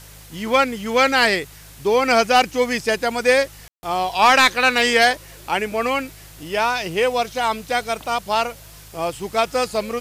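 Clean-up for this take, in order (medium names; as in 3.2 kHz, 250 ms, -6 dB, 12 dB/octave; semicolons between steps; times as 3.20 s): de-click; de-hum 52.1 Hz, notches 3; room tone fill 3.68–3.83 s; noise reduction 21 dB, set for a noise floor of -42 dBFS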